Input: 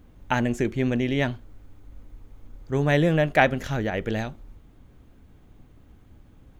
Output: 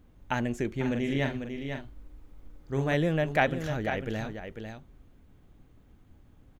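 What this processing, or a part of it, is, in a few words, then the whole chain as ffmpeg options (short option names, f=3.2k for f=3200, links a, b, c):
ducked delay: -filter_complex "[0:a]asplit=3[a][b][c];[b]adelay=497,volume=-7dB[d];[c]apad=whole_len=312597[e];[d][e]sidechaincompress=threshold=-24dB:ratio=8:attack=7.4:release=104[f];[a][f]amix=inputs=2:normalize=0,asettb=1/sr,asplit=3[g][h][i];[g]atrim=end=0.744[j];[h]atrim=start=0.74:end=2.94,asetpts=PTS-STARTPTS,afade=t=in:d=0.004:c=qsin,afade=t=out:st=2.196:d=0.004:c=qsin,asplit=2[k][l];[l]adelay=44,volume=-5dB[m];[k][m]amix=inputs=2:normalize=0,atrim=end_sample=97020[n];[i]atrim=start=2.936[o];[j][n]acrossfade=d=0.004:c1=hsin:c2=qsin[p];[p][o]acrossfade=d=0.004:c1=qsin:c2=hsin,volume=-6dB"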